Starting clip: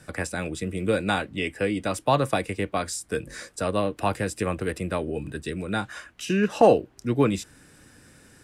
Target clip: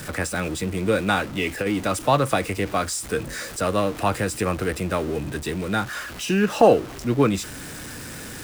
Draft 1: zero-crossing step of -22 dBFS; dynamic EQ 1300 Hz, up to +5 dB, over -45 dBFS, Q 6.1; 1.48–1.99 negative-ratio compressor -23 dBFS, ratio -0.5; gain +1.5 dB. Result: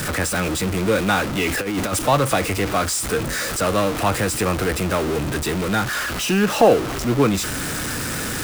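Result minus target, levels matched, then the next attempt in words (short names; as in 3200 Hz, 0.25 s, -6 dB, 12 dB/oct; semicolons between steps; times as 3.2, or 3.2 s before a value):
zero-crossing step: distortion +9 dB
zero-crossing step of -33 dBFS; dynamic EQ 1300 Hz, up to +5 dB, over -45 dBFS, Q 6.1; 1.48–1.99 negative-ratio compressor -23 dBFS, ratio -0.5; gain +1.5 dB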